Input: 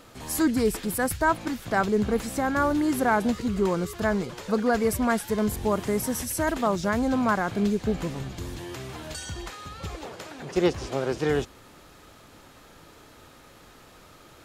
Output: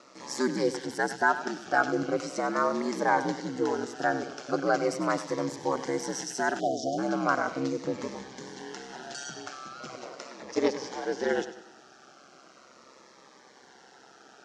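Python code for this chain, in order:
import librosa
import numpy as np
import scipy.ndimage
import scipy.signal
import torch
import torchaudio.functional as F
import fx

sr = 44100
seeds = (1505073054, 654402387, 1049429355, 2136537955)

p1 = x * np.sin(2.0 * np.pi * 66.0 * np.arange(len(x)) / sr)
p2 = fx.cabinet(p1, sr, low_hz=310.0, low_slope=12, high_hz=6500.0, hz=(770.0, 1500.0, 2500.0, 3600.0, 5700.0), db=(5, 5, -4, -5, 6))
p3 = p2 + fx.echo_feedback(p2, sr, ms=97, feedback_pct=43, wet_db=-13.0, dry=0)
p4 = fx.spec_erase(p3, sr, start_s=6.6, length_s=0.38, low_hz=760.0, high_hz=2900.0)
p5 = fx.notch_cascade(p4, sr, direction='falling', hz=0.39)
y = F.gain(torch.from_numpy(p5), 2.0).numpy()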